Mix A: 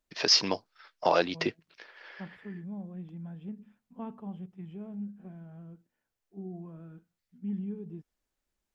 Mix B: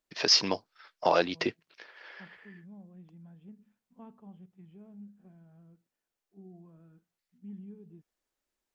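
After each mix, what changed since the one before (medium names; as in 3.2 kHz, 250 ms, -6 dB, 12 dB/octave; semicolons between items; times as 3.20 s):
second voice -10.0 dB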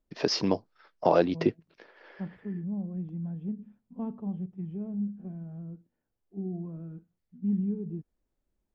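second voice +8.5 dB; master: add tilt shelf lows +9 dB, about 840 Hz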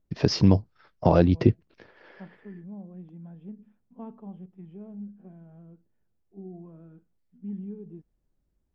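first voice: remove high-pass 350 Hz 12 dB/octave; second voice: add high-pass 440 Hz 6 dB/octave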